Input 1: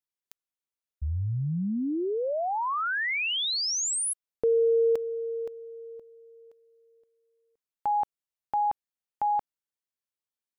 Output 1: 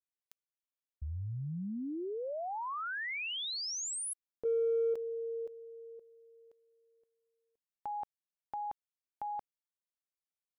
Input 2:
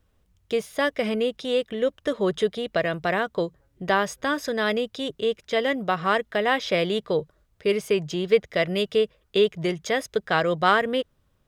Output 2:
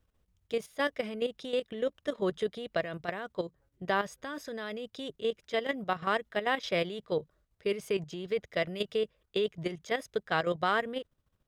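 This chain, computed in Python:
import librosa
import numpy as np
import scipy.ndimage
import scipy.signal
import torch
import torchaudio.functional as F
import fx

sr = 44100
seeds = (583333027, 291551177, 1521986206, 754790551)

y = fx.level_steps(x, sr, step_db=11)
y = y * 10.0 ** (-5.0 / 20.0)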